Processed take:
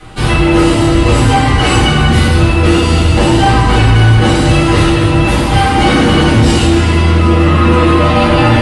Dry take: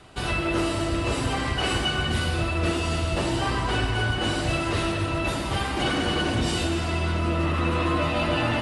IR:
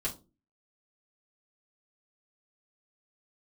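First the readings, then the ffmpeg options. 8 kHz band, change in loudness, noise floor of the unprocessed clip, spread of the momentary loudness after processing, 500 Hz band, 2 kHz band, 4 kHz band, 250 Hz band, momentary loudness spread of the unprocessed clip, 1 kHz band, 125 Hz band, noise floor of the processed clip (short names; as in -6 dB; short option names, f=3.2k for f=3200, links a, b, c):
+13.0 dB, +15.5 dB, -28 dBFS, 2 LU, +14.5 dB, +12.5 dB, +11.5 dB, +17.0 dB, 2 LU, +15.5 dB, +18.0 dB, -11 dBFS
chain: -filter_complex "[1:a]atrim=start_sample=2205,asetrate=31752,aresample=44100[a];[0:a][a]afir=irnorm=-1:irlink=0,apsyclip=11dB,volume=-2dB"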